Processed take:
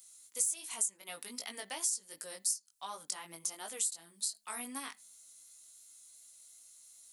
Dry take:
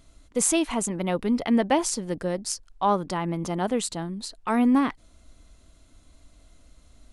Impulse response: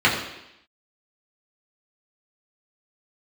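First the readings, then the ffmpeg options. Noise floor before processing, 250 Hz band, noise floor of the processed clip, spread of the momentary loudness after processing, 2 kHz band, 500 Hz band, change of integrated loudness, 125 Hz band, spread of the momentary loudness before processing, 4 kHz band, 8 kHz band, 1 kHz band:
−57 dBFS, −30.0 dB, −68 dBFS, 21 LU, −12.5 dB, −24.0 dB, −11.0 dB, −33.5 dB, 9 LU, −7.5 dB, −3.5 dB, −19.5 dB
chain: -filter_complex "[0:a]acrossover=split=440|5300[link_01][link_02][link_03];[link_03]acontrast=82[link_04];[link_01][link_02][link_04]amix=inputs=3:normalize=0,alimiter=limit=-12.5dB:level=0:latency=1:release=257,aderivative,bandreject=frequency=105.6:width_type=h:width=4,bandreject=frequency=211.2:width_type=h:width=4,asplit=2[link_05][link_06];[1:a]atrim=start_sample=2205,atrim=end_sample=3969[link_07];[link_06][link_07]afir=irnorm=-1:irlink=0,volume=-36.5dB[link_08];[link_05][link_08]amix=inputs=2:normalize=0,flanger=delay=18:depth=2.8:speed=2.7,acompressor=threshold=-41dB:ratio=3,highshelf=frequency=5800:gain=6.5,volume=3dB"

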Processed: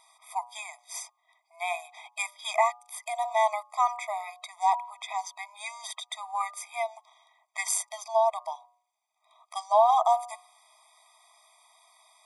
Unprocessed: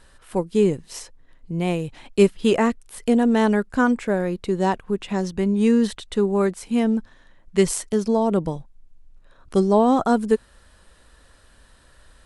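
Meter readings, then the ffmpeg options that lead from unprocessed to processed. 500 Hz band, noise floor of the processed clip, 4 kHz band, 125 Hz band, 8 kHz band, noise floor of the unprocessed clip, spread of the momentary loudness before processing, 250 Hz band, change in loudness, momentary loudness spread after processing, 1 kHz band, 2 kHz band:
−10.5 dB, −76 dBFS, −4.0 dB, below −40 dB, −1.0 dB, −54 dBFS, 10 LU, below −40 dB, −8.0 dB, 15 LU, +1.5 dB, −5.0 dB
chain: -filter_complex "[0:a]bandreject=frequency=120.7:width_type=h:width=4,bandreject=frequency=241.4:width_type=h:width=4,bandreject=frequency=362.1:width_type=h:width=4,bandreject=frequency=482.8:width_type=h:width=4,bandreject=frequency=603.5:width_type=h:width=4,bandreject=frequency=724.2:width_type=h:width=4,bandreject=frequency=844.9:width_type=h:width=4,bandreject=frequency=965.6:width_type=h:width=4,bandreject=frequency=1086.3:width_type=h:width=4,bandreject=frequency=1207:width_type=h:width=4,bandreject=frequency=1327.7:width_type=h:width=4,acrossover=split=220[link_01][link_02];[link_01]acompressor=threshold=-40dB:ratio=16[link_03];[link_03][link_02]amix=inputs=2:normalize=0,afftfilt=real='re*eq(mod(floor(b*sr/1024/640),2),1)':imag='im*eq(mod(floor(b*sr/1024/640),2),1)':win_size=1024:overlap=0.75,volume=2dB"

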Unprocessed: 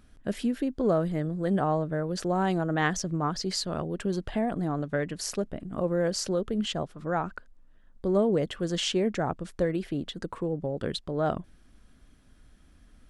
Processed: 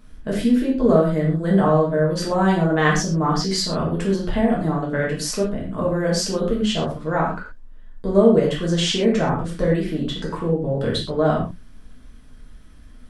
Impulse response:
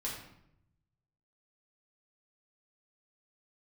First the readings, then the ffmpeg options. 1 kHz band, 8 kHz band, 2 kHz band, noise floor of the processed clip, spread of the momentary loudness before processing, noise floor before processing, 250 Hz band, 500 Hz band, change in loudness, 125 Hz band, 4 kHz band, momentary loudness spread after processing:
+7.5 dB, +7.0 dB, +8.5 dB, −43 dBFS, 8 LU, −58 dBFS, +9.0 dB, +9.0 dB, +9.0 dB, +9.5 dB, +8.0 dB, 8 LU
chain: -filter_complex "[1:a]atrim=start_sample=2205,atrim=end_sample=6174[link_01];[0:a][link_01]afir=irnorm=-1:irlink=0,volume=7dB"

